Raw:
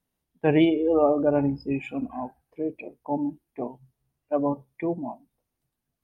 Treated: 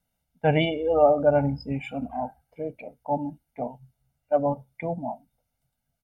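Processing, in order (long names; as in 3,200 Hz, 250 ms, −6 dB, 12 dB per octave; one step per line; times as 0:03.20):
comb filter 1.4 ms, depth 85%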